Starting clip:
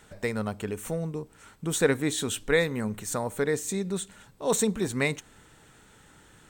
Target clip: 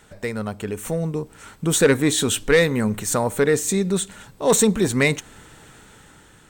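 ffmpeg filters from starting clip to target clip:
ffmpeg -i in.wav -af "asoftclip=type=tanh:threshold=-16.5dB,dynaudnorm=framelen=270:gausssize=7:maxgain=6.5dB,volume=3dB" out.wav

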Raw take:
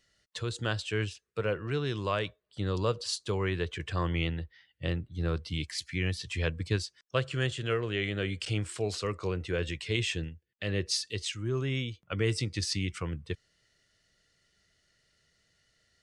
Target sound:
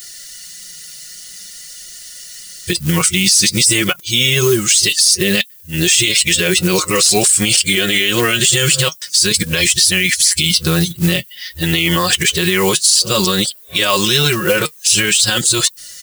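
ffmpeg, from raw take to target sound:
ffmpeg -i in.wav -af "areverse,aemphasis=mode=production:type=75kf,aecho=1:1:5.5:0.77,flanger=delay=2.7:depth=3.9:regen=58:speed=0.51:shape=triangular,acrusher=bits=6:mode=log:mix=0:aa=0.000001,crystalizer=i=4:c=0,alimiter=level_in=23dB:limit=-1dB:release=50:level=0:latency=1,volume=-1dB" out.wav

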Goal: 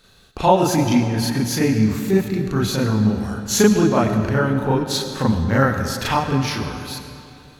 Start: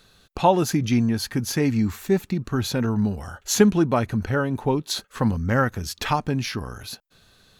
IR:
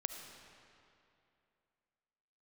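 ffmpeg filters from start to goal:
-filter_complex "[0:a]asplit=2[link_01][link_02];[1:a]atrim=start_sample=2205,adelay=37[link_03];[link_02][link_03]afir=irnorm=-1:irlink=0,volume=4dB[link_04];[link_01][link_04]amix=inputs=2:normalize=0,volume=-1dB"

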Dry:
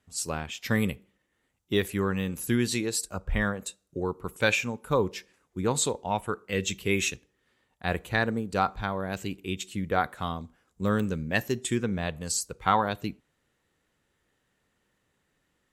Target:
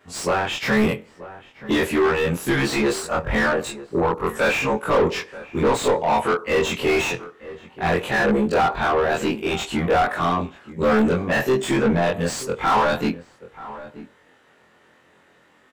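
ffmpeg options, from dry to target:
ffmpeg -i in.wav -filter_complex "[0:a]afftfilt=real='re':imag='-im':win_size=2048:overlap=0.75,asplit=2[link_01][link_02];[link_02]highpass=frequency=720:poles=1,volume=32dB,asoftclip=type=tanh:threshold=-12.5dB[link_03];[link_01][link_03]amix=inputs=2:normalize=0,lowpass=frequency=1100:poles=1,volume=-6dB,asplit=2[link_04][link_05];[link_05]adelay=932.9,volume=-16dB,highshelf=frequency=4000:gain=-21[link_06];[link_04][link_06]amix=inputs=2:normalize=0,volume=4dB" out.wav

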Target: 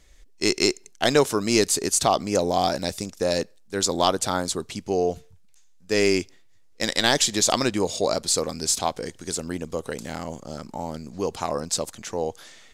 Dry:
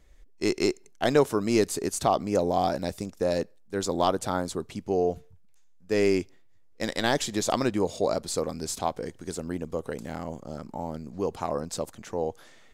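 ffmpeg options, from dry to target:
ffmpeg -i in.wav -af "equalizer=frequency=5900:width_type=o:width=2.9:gain=10,volume=1.5dB" out.wav

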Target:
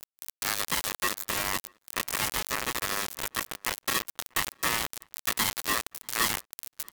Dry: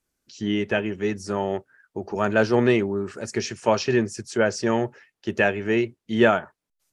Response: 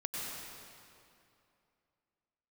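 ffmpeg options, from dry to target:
-filter_complex "[0:a]aeval=exprs='val(0)+0.5*0.0794*sgn(val(0))':channel_layout=same,asettb=1/sr,asplit=3[link_01][link_02][link_03];[link_01]atrim=end=2.274[link_04];[link_02]atrim=start=2.27:end=4.54,asetpts=PTS-STARTPTS,afade=type=in:duration=0.004:curve=qsin,afade=type=out:start_time=2.266:duration=0.004:curve=qsin,acompressor=threshold=-18dB:ratio=8[link_05];[link_03]atrim=start=4.536[link_06];[link_04][link_05]acrossfade=duration=0.004:curve1=hsin:curve2=qsin[link_07];[link_07][link_06]acrossfade=duration=0.004:curve1=qsin:curve2=hsin,flanger=delay=20:depth=2.7:speed=0.31,acrossover=split=500|2500[link_08][link_09][link_10];[link_08]acompressor=threshold=-28dB:ratio=4[link_11];[link_09]acompressor=threshold=-33dB:ratio=4[link_12];[link_10]acompressor=threshold=-34dB:ratio=4[link_13];[link_11][link_12][link_13]amix=inputs=3:normalize=0,acrusher=bits=3:mix=0:aa=0.000001,aeval=exprs='val(0)*sin(2*PI*1500*n/s)':channel_layout=same,aemphasis=mode=production:type=cd,asplit=2[link_14][link_15];[link_15]adelay=641.4,volume=-29dB,highshelf=frequency=4000:gain=-14.4[link_16];[link_14][link_16]amix=inputs=2:normalize=0,adynamicequalizer=threshold=0.01:dfrequency=1600:dqfactor=0.7:tfrequency=1600:tqfactor=0.7:attack=5:release=100:ratio=0.375:range=2:mode=cutabove:tftype=highshelf"

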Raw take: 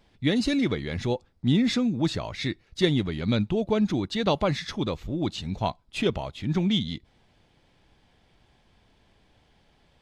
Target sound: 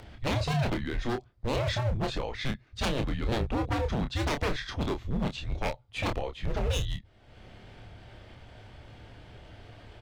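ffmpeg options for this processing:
ffmpeg -i in.wav -filter_complex "[0:a]highshelf=frequency=3900:gain=-10.5,acompressor=mode=upward:threshold=-36dB:ratio=2.5,aeval=exprs='0.0668*(abs(mod(val(0)/0.0668+3,4)-2)-1)':channel_layout=same,afreqshift=-130,asplit=2[link_01][link_02];[link_02]adelay=28,volume=-6.5dB[link_03];[link_01][link_03]amix=inputs=2:normalize=0" out.wav

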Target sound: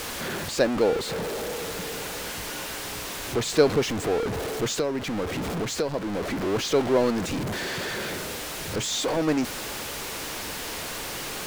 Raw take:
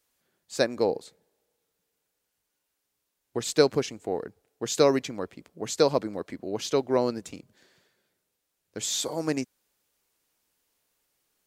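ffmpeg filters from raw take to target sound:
ffmpeg -i in.wav -filter_complex "[0:a]aeval=exprs='val(0)+0.5*0.075*sgn(val(0))':channel_layout=same,lowpass=frequency=3600:poles=1,asettb=1/sr,asplit=3[link_01][link_02][link_03];[link_01]atrim=end=4.714[link_04];[link_02]atrim=start=4.71:end=6.43,asetpts=PTS-STARTPTS,afade=type=in:duration=0.004:curve=qsin,afade=type=out:start_time=1.716:duration=0.004:curve=qsin,acompressor=threshold=-26dB:ratio=3[link_05];[link_03]atrim=start=6.426[link_06];[link_04][link_05]acrossfade=duration=0.004:curve1=hsin:curve2=qsin[link_07];[link_07][link_06]acrossfade=duration=0.004:curve1=qsin:curve2=hsin" out.wav

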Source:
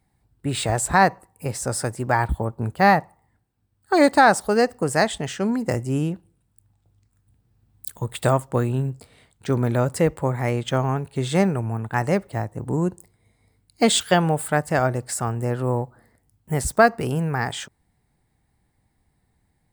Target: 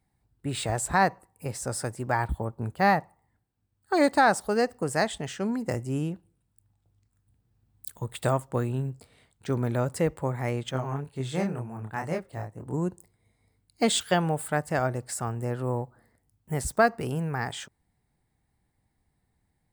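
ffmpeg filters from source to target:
ffmpeg -i in.wav -filter_complex "[0:a]asettb=1/sr,asplit=3[link_01][link_02][link_03];[link_01]atrim=end=10.714[link_04];[link_02]atrim=start=10.71:end=12.74,asetpts=PTS-STARTPTS,afade=type=in:duration=0.004:curve=qsin,afade=type=out:start_time=2.026:duration=0.004:curve=qsin,flanger=delay=22.5:depth=7:speed=2[link_05];[link_03]atrim=start=12.736[link_06];[link_04][link_05]acrossfade=duration=0.004:curve1=hsin:curve2=qsin[link_07];[link_07][link_06]acrossfade=duration=0.004:curve1=qsin:curve2=hsin,volume=-6dB" out.wav

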